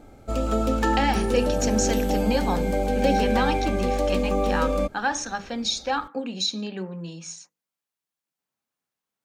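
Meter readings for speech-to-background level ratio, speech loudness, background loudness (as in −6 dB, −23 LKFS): −3.0 dB, −28.0 LKFS, −25.0 LKFS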